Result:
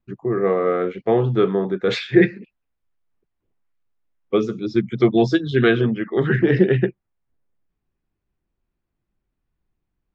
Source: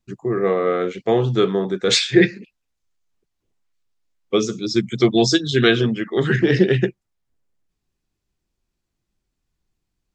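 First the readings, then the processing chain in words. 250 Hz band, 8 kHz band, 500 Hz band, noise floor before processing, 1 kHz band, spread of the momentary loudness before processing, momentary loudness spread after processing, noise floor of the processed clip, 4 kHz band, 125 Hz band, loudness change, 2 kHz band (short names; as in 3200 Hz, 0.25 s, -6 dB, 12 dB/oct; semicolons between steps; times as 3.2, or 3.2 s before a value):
0.0 dB, under -20 dB, 0.0 dB, -79 dBFS, -0.5 dB, 6 LU, 6 LU, -79 dBFS, -10.5 dB, 0.0 dB, -1.0 dB, -2.0 dB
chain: LPF 2100 Hz 12 dB/oct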